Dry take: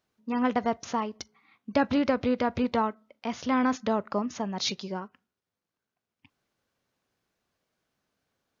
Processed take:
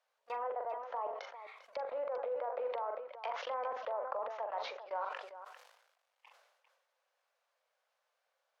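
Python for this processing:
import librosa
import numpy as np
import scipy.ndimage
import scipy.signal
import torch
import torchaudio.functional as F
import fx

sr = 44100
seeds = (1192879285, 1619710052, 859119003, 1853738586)

y = fx.law_mismatch(x, sr, coded='mu')
y = scipy.signal.sosfilt(scipy.signal.cheby1(5, 1.0, 520.0, 'highpass', fs=sr, output='sos'), y)
y = fx.env_lowpass_down(y, sr, base_hz=840.0, full_db=-30.0)
y = fx.lowpass(y, sr, hz=2300.0, slope=6)
y = fx.level_steps(y, sr, step_db=23)
y = fx.echo_multitap(y, sr, ms=(42, 398), db=(-11.5, -12.0))
y = fx.sustainer(y, sr, db_per_s=56.0)
y = F.gain(torch.from_numpy(y), 8.5).numpy()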